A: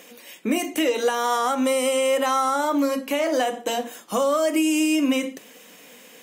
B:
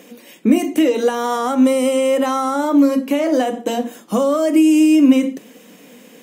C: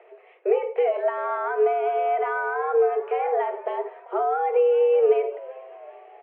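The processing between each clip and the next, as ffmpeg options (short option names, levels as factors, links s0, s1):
-af "equalizer=f=220:w=0.56:g=12.5,volume=0.891"
-filter_complex "[0:a]highpass=f=210:t=q:w=0.5412,highpass=f=210:t=q:w=1.307,lowpass=f=2200:t=q:w=0.5176,lowpass=f=2200:t=q:w=0.7071,lowpass=f=2200:t=q:w=1.932,afreqshift=170,asplit=5[s0][s1][s2][s3][s4];[s1]adelay=390,afreqshift=88,volume=0.0891[s5];[s2]adelay=780,afreqshift=176,volume=0.0479[s6];[s3]adelay=1170,afreqshift=264,volume=0.026[s7];[s4]adelay=1560,afreqshift=352,volume=0.014[s8];[s0][s5][s6][s7][s8]amix=inputs=5:normalize=0,volume=0.447"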